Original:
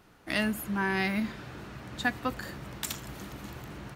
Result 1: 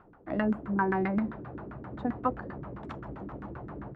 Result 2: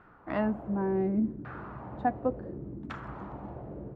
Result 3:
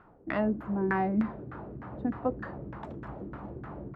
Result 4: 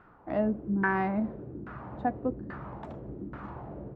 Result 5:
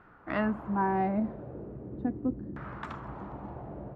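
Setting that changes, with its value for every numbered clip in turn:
LFO low-pass, rate: 7.6 Hz, 0.69 Hz, 3.3 Hz, 1.2 Hz, 0.39 Hz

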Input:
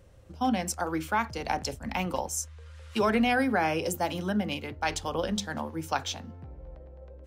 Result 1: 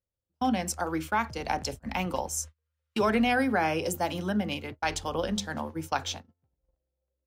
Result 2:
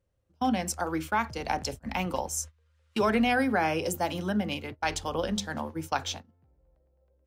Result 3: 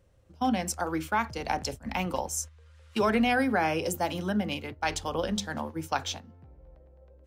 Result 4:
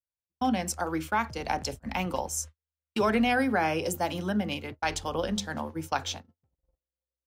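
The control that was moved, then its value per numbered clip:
gate, range: -37 dB, -21 dB, -8 dB, -51 dB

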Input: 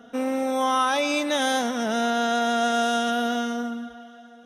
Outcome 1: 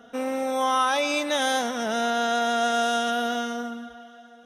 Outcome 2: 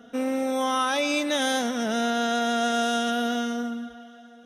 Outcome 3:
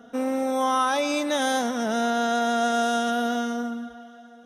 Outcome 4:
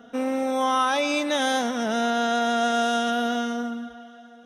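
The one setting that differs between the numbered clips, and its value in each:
peaking EQ, frequency: 250 Hz, 930 Hz, 2.7 kHz, 13 kHz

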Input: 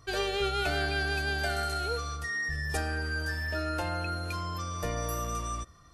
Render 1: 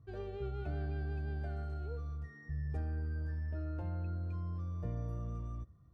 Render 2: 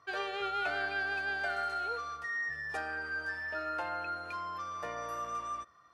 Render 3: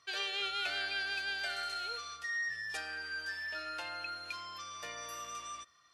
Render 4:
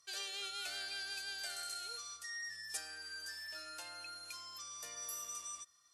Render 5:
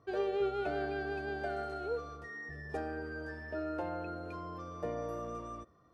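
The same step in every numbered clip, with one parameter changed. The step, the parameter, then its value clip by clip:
band-pass filter, frequency: 110 Hz, 1.2 kHz, 3 kHz, 7.7 kHz, 420 Hz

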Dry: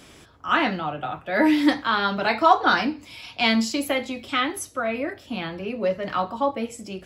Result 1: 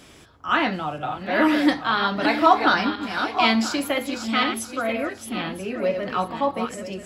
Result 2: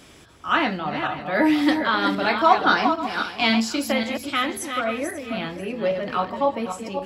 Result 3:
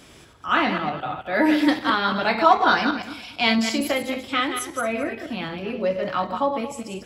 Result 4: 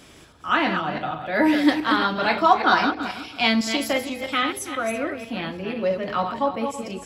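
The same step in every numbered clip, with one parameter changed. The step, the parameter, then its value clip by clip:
backward echo that repeats, time: 493 ms, 269 ms, 112 ms, 164 ms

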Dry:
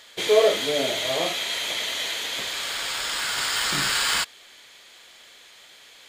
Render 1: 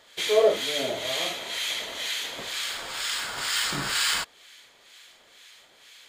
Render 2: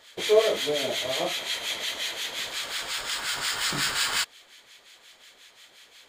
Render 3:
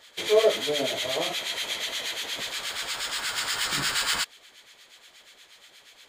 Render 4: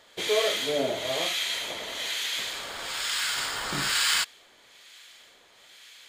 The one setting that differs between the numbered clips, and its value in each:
harmonic tremolo, rate: 2.1 Hz, 5.6 Hz, 8.4 Hz, 1.1 Hz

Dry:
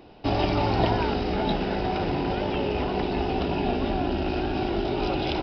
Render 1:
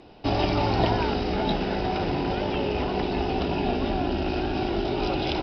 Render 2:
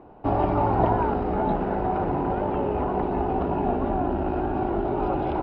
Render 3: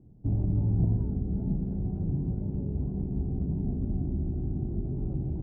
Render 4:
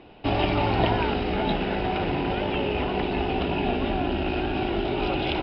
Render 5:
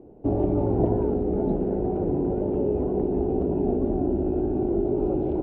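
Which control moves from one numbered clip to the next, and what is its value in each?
resonant low-pass, frequency: 7.9 kHz, 1.1 kHz, 150 Hz, 2.9 kHz, 430 Hz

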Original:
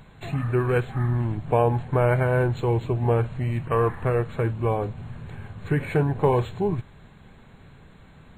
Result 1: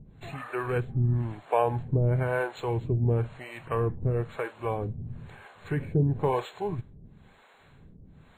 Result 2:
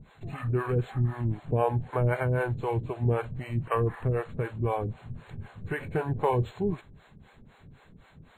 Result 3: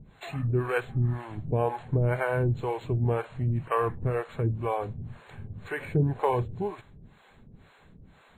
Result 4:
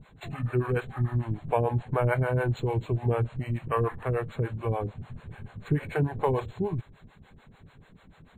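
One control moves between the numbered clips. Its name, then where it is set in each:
harmonic tremolo, rate: 1 Hz, 3.9 Hz, 2 Hz, 6.8 Hz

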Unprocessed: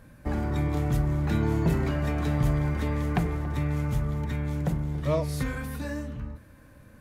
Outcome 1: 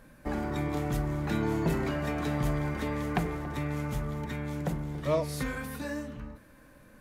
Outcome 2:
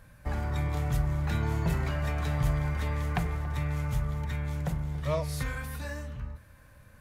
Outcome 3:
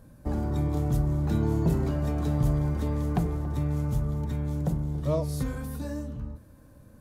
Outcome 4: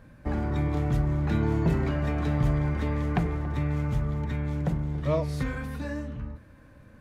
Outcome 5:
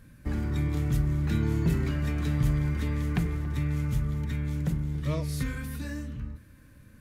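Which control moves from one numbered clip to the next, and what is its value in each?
peaking EQ, frequency: 87 Hz, 290 Hz, 2.1 kHz, 14 kHz, 720 Hz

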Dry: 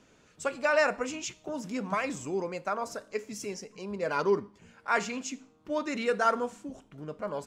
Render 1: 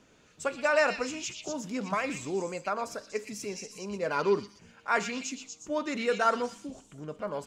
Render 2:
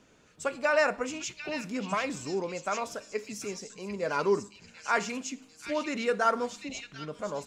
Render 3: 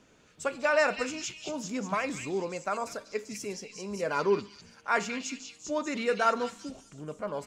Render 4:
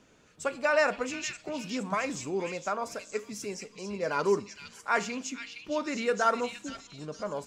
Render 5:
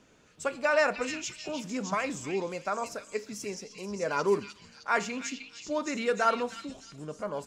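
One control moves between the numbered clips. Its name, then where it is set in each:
repeats whose band climbs or falls, time: 120 ms, 744 ms, 197 ms, 464 ms, 307 ms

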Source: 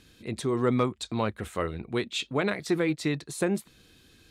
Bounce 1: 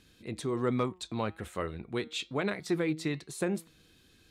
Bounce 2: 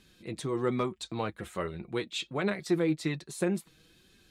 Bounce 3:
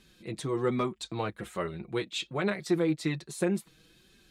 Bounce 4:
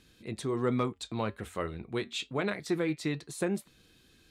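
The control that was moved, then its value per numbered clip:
flange, regen: +91%, +36%, +3%, -81%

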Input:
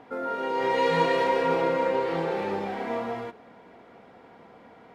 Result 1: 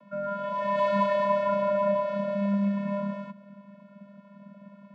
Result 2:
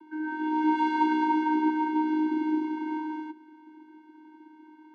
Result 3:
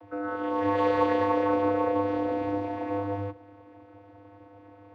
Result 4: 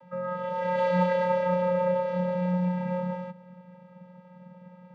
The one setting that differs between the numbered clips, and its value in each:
vocoder, frequency: 200 Hz, 310 Hz, 100 Hz, 180 Hz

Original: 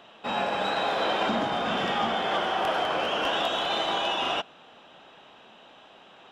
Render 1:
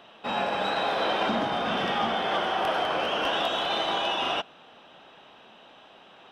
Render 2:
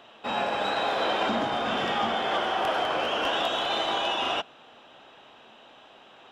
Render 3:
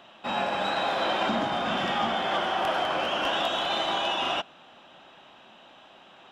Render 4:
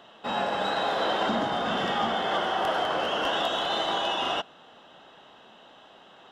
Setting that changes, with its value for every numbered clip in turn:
band-stop, frequency: 7.1 kHz, 180 Hz, 450 Hz, 2.4 kHz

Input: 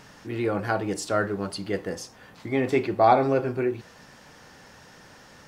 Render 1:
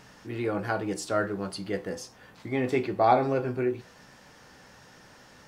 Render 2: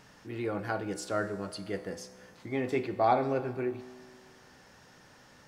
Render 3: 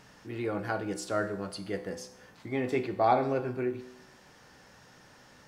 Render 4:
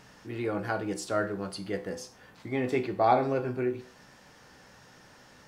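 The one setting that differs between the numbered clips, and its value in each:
feedback comb, decay: 0.17 s, 2 s, 0.89 s, 0.4 s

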